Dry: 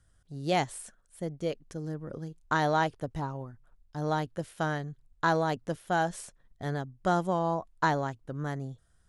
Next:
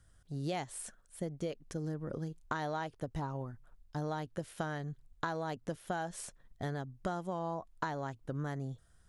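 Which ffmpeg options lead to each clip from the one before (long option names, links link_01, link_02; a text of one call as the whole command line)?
ffmpeg -i in.wav -af "acompressor=threshold=-35dB:ratio=10,volume=1.5dB" out.wav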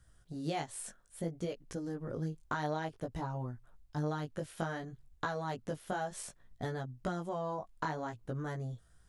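ffmpeg -i in.wav -af "flanger=delay=16:depth=4.2:speed=0.59,volume=3.5dB" out.wav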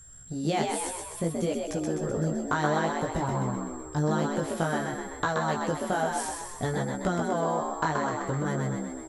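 ffmpeg -i in.wav -filter_complex "[0:a]aeval=exprs='val(0)+0.00141*sin(2*PI*7500*n/s)':channel_layout=same,asplit=9[link_01][link_02][link_03][link_04][link_05][link_06][link_07][link_08][link_09];[link_02]adelay=127,afreqshift=62,volume=-4dB[link_10];[link_03]adelay=254,afreqshift=124,volume=-8.7dB[link_11];[link_04]adelay=381,afreqshift=186,volume=-13.5dB[link_12];[link_05]adelay=508,afreqshift=248,volume=-18.2dB[link_13];[link_06]adelay=635,afreqshift=310,volume=-22.9dB[link_14];[link_07]adelay=762,afreqshift=372,volume=-27.7dB[link_15];[link_08]adelay=889,afreqshift=434,volume=-32.4dB[link_16];[link_09]adelay=1016,afreqshift=496,volume=-37.1dB[link_17];[link_01][link_10][link_11][link_12][link_13][link_14][link_15][link_16][link_17]amix=inputs=9:normalize=0,volume=8dB" out.wav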